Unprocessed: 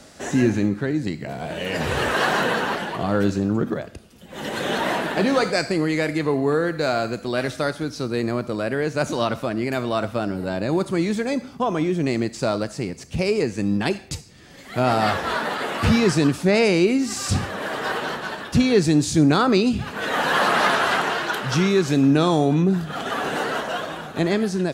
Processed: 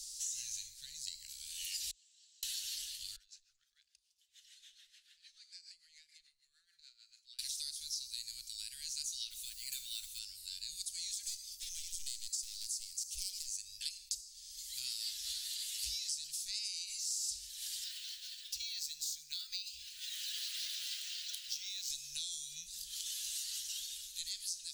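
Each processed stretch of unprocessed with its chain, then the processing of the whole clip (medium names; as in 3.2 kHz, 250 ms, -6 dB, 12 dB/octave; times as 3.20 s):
1.91–2.43 s: band-pass filter 7.6 kHz, Q 9.9 + distance through air 310 m
3.16–7.39 s: LFO band-pass sine 6.8 Hz 650–1700 Hz + compression 5:1, threshold -35 dBFS
9.30–10.19 s: peaking EQ 5.2 kHz -12.5 dB 0.22 oct + comb 6.4 ms, depth 46% + modulation noise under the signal 34 dB
11.23–13.57 s: upward compressor, threshold -36 dBFS + treble shelf 6.9 kHz +7.5 dB + hard clipper -22 dBFS
17.84–21.90 s: tone controls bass -12 dB, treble -9 dB + upward compressor, threshold -27 dBFS + decimation joined by straight lines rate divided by 2×
whole clip: inverse Chebyshev band-stop 190–1000 Hz, stop band 80 dB; resonant low shelf 130 Hz -8 dB, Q 3; compression 5:1, threshold -44 dBFS; trim +6.5 dB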